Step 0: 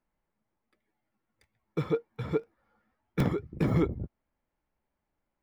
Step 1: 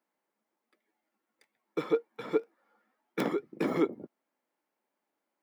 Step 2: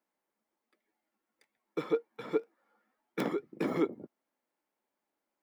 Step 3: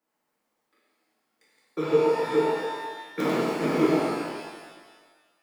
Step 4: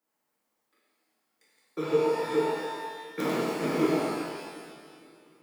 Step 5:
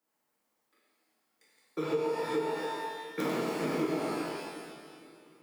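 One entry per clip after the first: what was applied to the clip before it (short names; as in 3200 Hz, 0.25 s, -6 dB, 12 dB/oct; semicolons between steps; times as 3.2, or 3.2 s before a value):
HPF 250 Hz 24 dB/oct; gain +1.5 dB
low shelf 73 Hz +7 dB; gain -2.5 dB
reverse delay 0.125 s, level -4 dB; shimmer reverb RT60 1.4 s, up +12 st, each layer -8 dB, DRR -7 dB
high shelf 5900 Hz +6 dB; on a send at -17 dB: reverb RT60 4.1 s, pre-delay 0.113 s; on the sum: gain -3.5 dB
compressor 3:1, threshold -29 dBFS, peak gain reduction 8 dB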